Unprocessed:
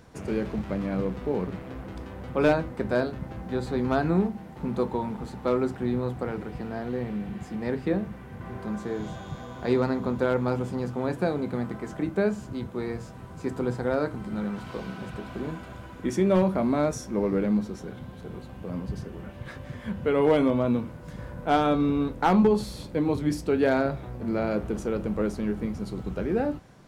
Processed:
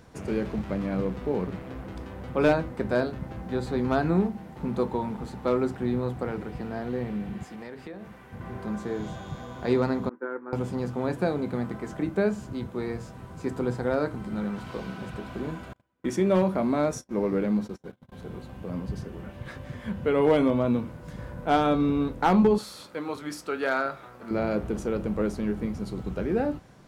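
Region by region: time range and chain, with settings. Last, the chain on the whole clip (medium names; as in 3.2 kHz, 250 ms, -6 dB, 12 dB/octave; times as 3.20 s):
7.44–8.33 s: bass shelf 350 Hz -11 dB + compression 12:1, threshold -35 dBFS
10.09–10.53 s: expander -22 dBFS + Chebyshev band-pass 300–1700 Hz, order 3 + peaking EQ 660 Hz -13.5 dB 0.96 oct
15.73–18.12 s: gate -37 dBFS, range -33 dB + bass shelf 86 Hz -8.5 dB
22.58–24.31 s: high-pass 870 Hz 6 dB/octave + peaking EQ 1.3 kHz +10 dB 0.39 oct
whole clip: none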